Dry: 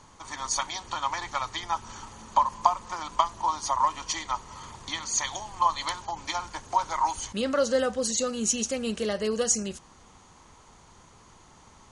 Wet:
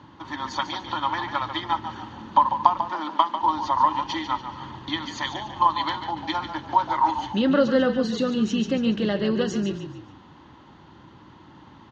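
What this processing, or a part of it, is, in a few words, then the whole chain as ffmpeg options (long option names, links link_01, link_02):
frequency-shifting delay pedal into a guitar cabinet: -filter_complex "[0:a]asplit=5[link_01][link_02][link_03][link_04][link_05];[link_02]adelay=144,afreqshift=-32,volume=-9.5dB[link_06];[link_03]adelay=288,afreqshift=-64,volume=-17.7dB[link_07];[link_04]adelay=432,afreqshift=-96,volume=-25.9dB[link_08];[link_05]adelay=576,afreqshift=-128,volume=-34dB[link_09];[link_01][link_06][link_07][link_08][link_09]amix=inputs=5:normalize=0,highpass=100,equalizer=frequency=130:width_type=q:width=4:gain=3,equalizer=frequency=310:width_type=q:width=4:gain=9,equalizer=frequency=450:width_type=q:width=4:gain=-9,equalizer=frequency=690:width_type=q:width=4:gain=-8,equalizer=frequency=1200:width_type=q:width=4:gain=-7,equalizer=frequency=2300:width_type=q:width=4:gain=-10,lowpass=frequency=3500:width=0.5412,lowpass=frequency=3500:width=1.3066,highshelf=frequency=5900:gain=-4.5,asettb=1/sr,asplit=3[link_10][link_11][link_12];[link_10]atrim=end=2.904[link_13];[link_11]atrim=start=2.9:end=3.43,asetpts=PTS-STARTPTS,afade=type=in:duration=0.004:curve=qsin,afade=type=out:start_time=0.526:duration=0.004:curve=qsin,highpass=frequency=210:width=0.5412,highpass=frequency=210:width=1.3066[link_14];[link_12]atrim=start=3.426[link_15];[link_13][link_14]acrossfade=duration=0.004:curve1=hsin:curve2=qsin[link_16];[link_16][link_15]acrossfade=duration=0.004:curve1=qsin:curve2=hsin,volume=8dB"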